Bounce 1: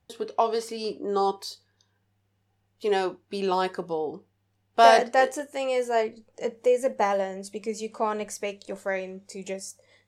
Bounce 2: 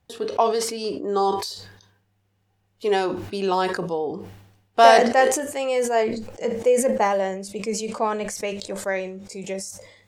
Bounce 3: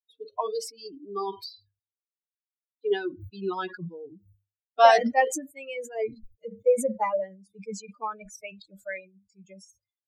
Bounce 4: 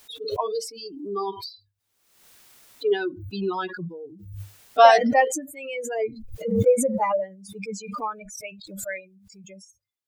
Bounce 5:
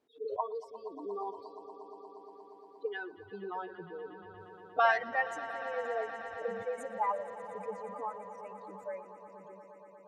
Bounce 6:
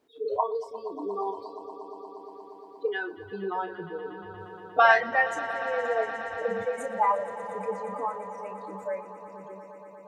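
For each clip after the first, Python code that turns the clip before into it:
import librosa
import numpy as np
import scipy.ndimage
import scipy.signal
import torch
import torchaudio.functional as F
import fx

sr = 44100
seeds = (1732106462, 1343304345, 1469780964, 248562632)

y1 = fx.sustainer(x, sr, db_per_s=65.0)
y1 = y1 * librosa.db_to_amplitude(3.0)
y2 = fx.bin_expand(y1, sr, power=3.0)
y2 = fx.high_shelf(y2, sr, hz=5200.0, db=-5.5)
y3 = fx.pre_swell(y2, sr, db_per_s=56.0)
y3 = y3 * librosa.db_to_amplitude(2.5)
y4 = fx.auto_wah(y3, sr, base_hz=330.0, top_hz=1500.0, q=2.1, full_db=-17.5, direction='up')
y4 = fx.echo_swell(y4, sr, ms=118, loudest=5, wet_db=-17.0)
y4 = y4 * librosa.db_to_amplitude(-4.5)
y5 = fx.doubler(y4, sr, ms=31.0, db=-9)
y5 = y5 * librosa.db_to_amplitude(7.5)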